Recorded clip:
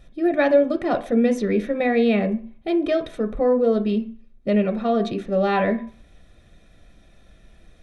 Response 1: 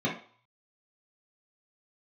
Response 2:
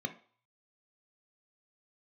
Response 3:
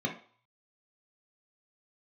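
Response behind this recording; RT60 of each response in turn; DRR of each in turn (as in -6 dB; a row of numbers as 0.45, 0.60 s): 2; not exponential, not exponential, not exponential; -6.0, 6.5, -0.5 dB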